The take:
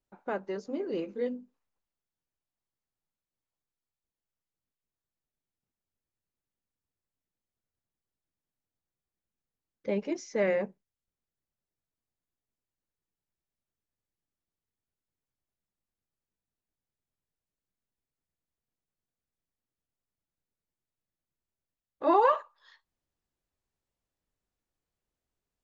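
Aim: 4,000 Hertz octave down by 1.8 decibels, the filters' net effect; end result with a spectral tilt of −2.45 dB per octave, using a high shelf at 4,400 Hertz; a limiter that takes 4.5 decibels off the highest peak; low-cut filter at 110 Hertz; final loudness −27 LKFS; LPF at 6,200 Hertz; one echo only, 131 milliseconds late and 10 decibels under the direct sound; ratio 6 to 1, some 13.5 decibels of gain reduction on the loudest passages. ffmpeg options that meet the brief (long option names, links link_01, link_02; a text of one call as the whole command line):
ffmpeg -i in.wav -af "highpass=110,lowpass=6200,equalizer=frequency=4000:width_type=o:gain=-5,highshelf=frequency=4400:gain=5.5,acompressor=threshold=-34dB:ratio=6,alimiter=level_in=5.5dB:limit=-24dB:level=0:latency=1,volume=-5.5dB,aecho=1:1:131:0.316,volume=13dB" out.wav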